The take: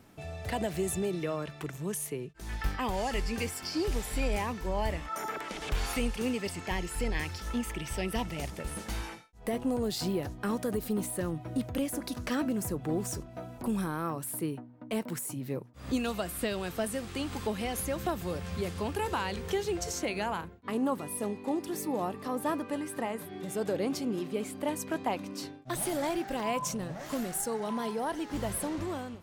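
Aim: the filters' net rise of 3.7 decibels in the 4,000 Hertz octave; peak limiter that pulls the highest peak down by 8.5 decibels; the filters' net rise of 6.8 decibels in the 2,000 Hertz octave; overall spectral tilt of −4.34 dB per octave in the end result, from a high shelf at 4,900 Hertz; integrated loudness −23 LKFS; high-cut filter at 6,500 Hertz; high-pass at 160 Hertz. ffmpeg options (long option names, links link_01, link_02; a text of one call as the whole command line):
ffmpeg -i in.wav -af "highpass=160,lowpass=6500,equalizer=frequency=2000:width_type=o:gain=8,equalizer=frequency=4000:width_type=o:gain=5,highshelf=frequency=4900:gain=-5.5,volume=12.5dB,alimiter=limit=-12.5dB:level=0:latency=1" out.wav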